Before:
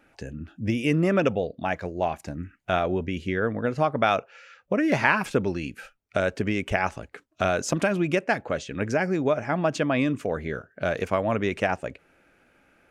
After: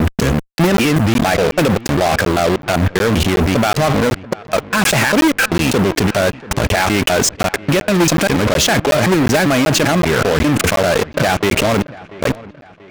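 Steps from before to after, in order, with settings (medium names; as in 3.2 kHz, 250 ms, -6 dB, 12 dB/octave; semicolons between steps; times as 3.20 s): slices played last to first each 197 ms, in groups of 3; high-pass 55 Hz 24 dB/octave; band-stop 940 Hz, Q 8.4; in parallel at 0 dB: compression 8:1, threshold -30 dBFS, peak gain reduction 15 dB; on the sum: peak limiter -12.5 dBFS, peak gain reduction 10 dB; level held to a coarse grid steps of 20 dB; modulation noise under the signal 34 dB; fuzz box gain 48 dB, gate -46 dBFS; on a send: feedback echo behind a low-pass 686 ms, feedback 45%, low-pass 2.9 kHz, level -19.5 dB; on the sum: crackling interface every 0.37 s, samples 512, zero, from 0.77 s; trim +3.5 dB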